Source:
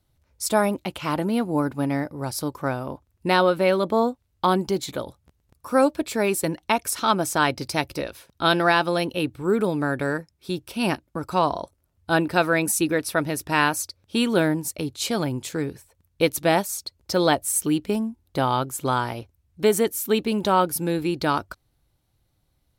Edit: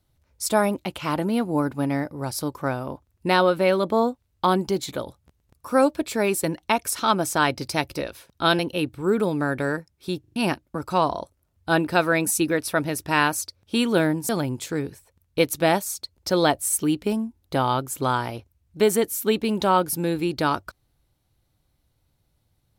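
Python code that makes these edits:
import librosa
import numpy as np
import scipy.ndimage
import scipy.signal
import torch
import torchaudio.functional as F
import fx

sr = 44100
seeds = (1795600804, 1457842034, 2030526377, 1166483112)

y = fx.edit(x, sr, fx.cut(start_s=8.59, length_s=0.41),
    fx.stutter_over(start_s=10.61, slice_s=0.04, count=4),
    fx.cut(start_s=14.7, length_s=0.42), tone=tone)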